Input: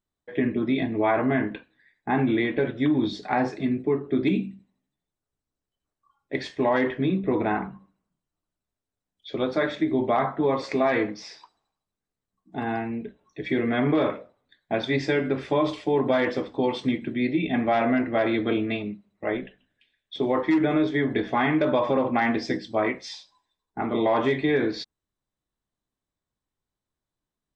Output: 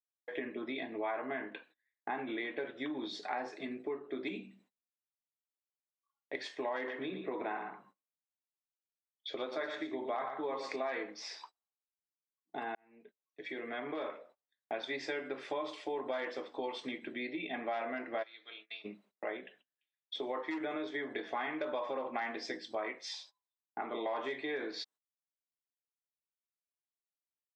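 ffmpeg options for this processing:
-filter_complex "[0:a]asettb=1/sr,asplit=3[a][b][c];[a]atrim=end=6.764[d];[b]atrim=start=6.76:end=10.76,asetpts=PTS-STARTPTS,afade=t=in:d=0.004:c=qsin,afade=t=out:st=3.996:d=0.004:c=qsin,aecho=1:1:116:0.376,atrim=end_sample=176400[e];[c]atrim=start=10.756[f];[d][e]acrossfade=d=0.004:c1=hsin:c2=qsin[g];[g][f]acrossfade=d=0.004:c1=qsin:c2=hsin,asplit=3[h][i][j];[h]afade=t=out:st=18.22:d=0.02[k];[i]bandpass=f=5.3k:t=q:w=2.5,afade=t=in:st=18.22:d=0.02,afade=t=out:st=18.84:d=0.02[l];[j]afade=t=in:st=18.84:d=0.02[m];[k][l][m]amix=inputs=3:normalize=0,asplit=2[n][o];[n]atrim=end=12.75,asetpts=PTS-STARTPTS,afade=t=out:st=12.746:d=0.004:c=hsin[p];[o]atrim=start=12.75,asetpts=PTS-STARTPTS,afade=t=in:d=1.99[q];[p][q]concat=n=2:v=0:a=1,agate=range=-25dB:threshold=-52dB:ratio=16:detection=peak,highpass=470,acompressor=threshold=-42dB:ratio=2.5,volume=1dB"

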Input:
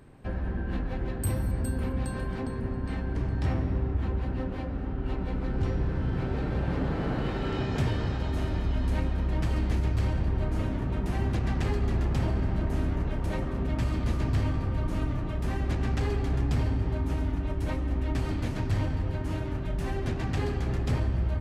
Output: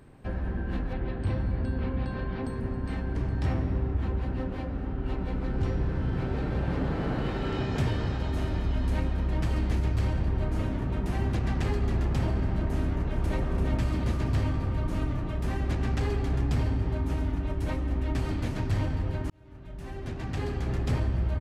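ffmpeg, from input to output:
-filter_complex "[0:a]asettb=1/sr,asplit=3[a][b][c];[a]atrim=end=0.934[d];[b]atrim=start=0.93:end=2.44,asetpts=PTS-STARTPTS,afade=t=in:d=0.004:c=qsin,afade=t=out:st=1.506:d=0.004:c=qsin,lowpass=f=4.4k:w=0.5412,lowpass=f=4.4k:w=1.3066[e];[c]atrim=start=2.436[f];[d][e]acrossfade=d=0.004:c1=hsin:c2=qsin[g];[g][f]acrossfade=d=0.004:c1=qsin:c2=hsin,asplit=2[h][i];[i]afade=t=in:st=12.81:d=0.01,afade=t=out:st=13.43:d=0.01,aecho=0:1:340|680|1020|1360|1700|2040|2380|2720:0.501187|0.300712|0.180427|0.108256|0.0649539|0.0389723|0.0233834|0.01403[j];[h][j]amix=inputs=2:normalize=0,asplit=2[k][l];[k]atrim=end=19.3,asetpts=PTS-STARTPTS,afade=t=out:st=19.296:d=0.004:c=hsin[m];[l]atrim=start=19.3,asetpts=PTS-STARTPTS,afade=t=in:d=1.5[n];[m][n]concat=n=2:v=0:a=1"

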